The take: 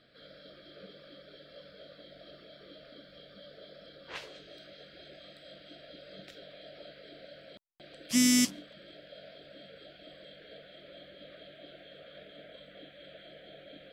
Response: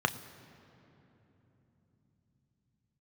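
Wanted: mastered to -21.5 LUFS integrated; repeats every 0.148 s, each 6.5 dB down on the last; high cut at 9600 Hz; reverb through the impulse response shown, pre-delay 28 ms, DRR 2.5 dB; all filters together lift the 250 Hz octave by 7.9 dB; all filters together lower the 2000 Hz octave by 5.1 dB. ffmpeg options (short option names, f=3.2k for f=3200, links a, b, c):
-filter_complex "[0:a]lowpass=9.6k,equalizer=f=250:t=o:g=8,equalizer=f=2k:t=o:g=-6,aecho=1:1:148|296|444|592|740|888:0.473|0.222|0.105|0.0491|0.0231|0.0109,asplit=2[a][b];[1:a]atrim=start_sample=2205,adelay=28[c];[b][c]afir=irnorm=-1:irlink=0,volume=-12dB[d];[a][d]amix=inputs=2:normalize=0,volume=-1.5dB"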